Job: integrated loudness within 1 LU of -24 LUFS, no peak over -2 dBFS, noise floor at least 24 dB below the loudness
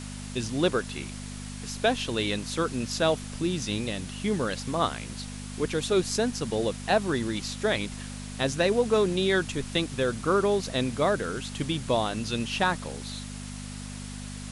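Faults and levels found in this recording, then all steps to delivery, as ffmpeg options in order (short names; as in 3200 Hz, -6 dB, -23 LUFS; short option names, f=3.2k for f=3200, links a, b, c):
hum 50 Hz; harmonics up to 250 Hz; hum level -36 dBFS; noise floor -38 dBFS; noise floor target -52 dBFS; loudness -28.0 LUFS; peak -11.0 dBFS; loudness target -24.0 LUFS
-> -af "bandreject=f=50:t=h:w=4,bandreject=f=100:t=h:w=4,bandreject=f=150:t=h:w=4,bandreject=f=200:t=h:w=4,bandreject=f=250:t=h:w=4"
-af "afftdn=nr=14:nf=-38"
-af "volume=4dB"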